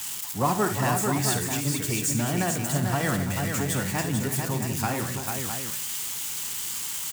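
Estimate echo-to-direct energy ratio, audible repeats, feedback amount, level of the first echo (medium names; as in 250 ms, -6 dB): -1.5 dB, 5, no regular repeats, -10.5 dB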